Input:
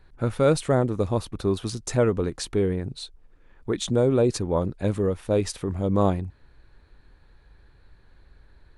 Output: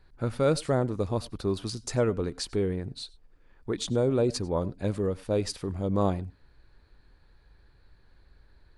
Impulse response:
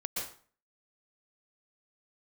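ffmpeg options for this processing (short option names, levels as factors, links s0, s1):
-filter_complex "[0:a]equalizer=f=4700:t=o:w=0.26:g=7,asplit=2[s0][s1];[1:a]atrim=start_sample=2205,atrim=end_sample=6174,asetrate=57330,aresample=44100[s2];[s1][s2]afir=irnorm=-1:irlink=0,volume=0.119[s3];[s0][s3]amix=inputs=2:normalize=0,volume=0.562"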